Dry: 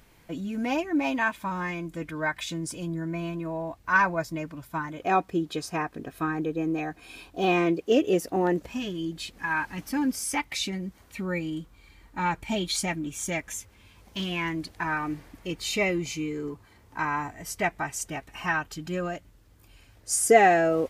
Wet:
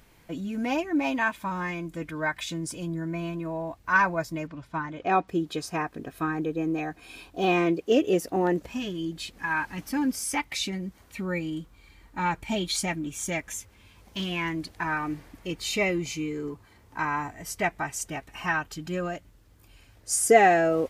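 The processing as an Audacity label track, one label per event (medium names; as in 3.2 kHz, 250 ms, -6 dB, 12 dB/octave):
4.470000	5.280000	low-pass 4.9 kHz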